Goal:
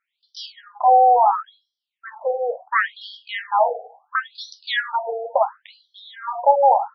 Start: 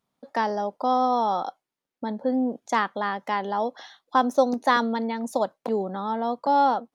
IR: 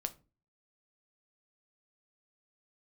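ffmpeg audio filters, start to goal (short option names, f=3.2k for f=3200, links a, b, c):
-filter_complex "[1:a]atrim=start_sample=2205,asetrate=26019,aresample=44100[a];[0:a][a]afir=irnorm=-1:irlink=0,afftfilt=real='re*between(b*sr/1024,570*pow(4300/570,0.5+0.5*sin(2*PI*0.72*pts/sr))/1.41,570*pow(4300/570,0.5+0.5*sin(2*PI*0.72*pts/sr))*1.41)':imag='im*between(b*sr/1024,570*pow(4300/570,0.5+0.5*sin(2*PI*0.72*pts/sr))/1.41,570*pow(4300/570,0.5+0.5*sin(2*PI*0.72*pts/sr))*1.41)':win_size=1024:overlap=0.75,volume=7.5dB"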